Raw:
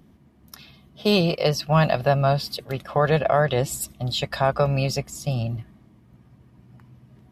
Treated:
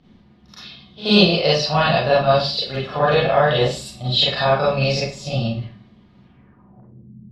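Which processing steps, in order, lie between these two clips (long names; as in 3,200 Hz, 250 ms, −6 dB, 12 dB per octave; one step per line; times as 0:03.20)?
echo ahead of the sound 80 ms −19.5 dB
four-comb reverb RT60 0.38 s, combs from 31 ms, DRR −7.5 dB
low-pass filter sweep 4,000 Hz → 200 Hz, 0:06.24–0:07.19
level −4 dB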